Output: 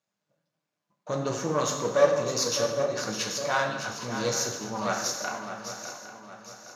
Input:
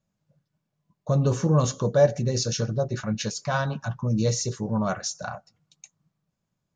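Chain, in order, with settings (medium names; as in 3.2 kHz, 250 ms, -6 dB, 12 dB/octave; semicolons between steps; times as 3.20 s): partial rectifier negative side -7 dB; frequency weighting A; flange 1.6 Hz, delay 5.7 ms, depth 9 ms, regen +72%; shuffle delay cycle 810 ms, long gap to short 3:1, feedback 40%, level -9.5 dB; gated-style reverb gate 320 ms falling, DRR 3.5 dB; trim +6.5 dB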